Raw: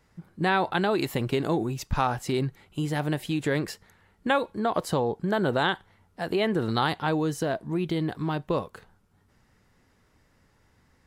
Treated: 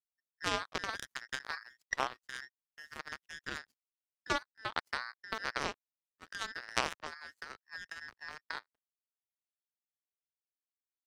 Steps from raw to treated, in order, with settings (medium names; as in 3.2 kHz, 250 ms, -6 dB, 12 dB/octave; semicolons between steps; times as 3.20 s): every band turned upside down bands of 2 kHz; power-law waveshaper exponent 3; 6.92–8.42 s: three bands compressed up and down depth 100%; trim +3 dB